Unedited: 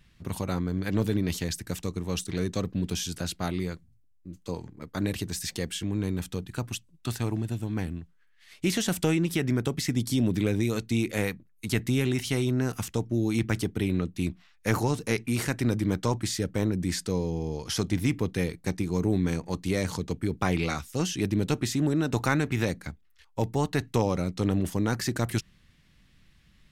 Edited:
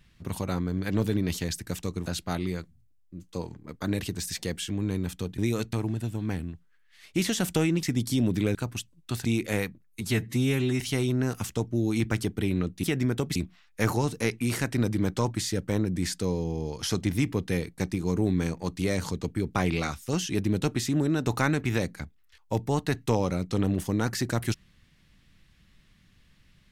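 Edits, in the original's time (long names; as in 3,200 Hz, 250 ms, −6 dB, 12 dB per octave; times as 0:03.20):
0:02.06–0:03.19: remove
0:06.51–0:07.21: swap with 0:10.55–0:10.90
0:09.31–0:09.83: move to 0:14.22
0:11.66–0:12.19: time-stretch 1.5×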